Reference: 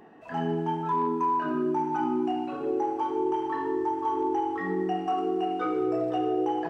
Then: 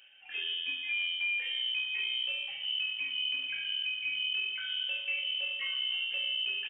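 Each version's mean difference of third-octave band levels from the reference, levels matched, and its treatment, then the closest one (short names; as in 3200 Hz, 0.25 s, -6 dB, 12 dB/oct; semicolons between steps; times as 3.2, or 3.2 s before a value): 17.0 dB: HPF 170 Hz 12 dB/oct; echo 1.088 s -16 dB; inverted band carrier 3400 Hz; gain -6.5 dB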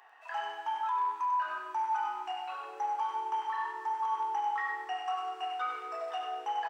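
11.5 dB: HPF 880 Hz 24 dB/oct; limiter -27.5 dBFS, peak gain reduction 5.5 dB; echo 95 ms -6.5 dB; gain +1.5 dB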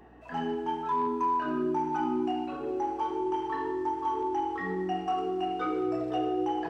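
2.0 dB: dynamic EQ 4100 Hz, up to +4 dB, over -46 dBFS, Q 0.76; hum 60 Hz, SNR 29 dB; de-hum 55.16 Hz, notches 12; gain -2 dB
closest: third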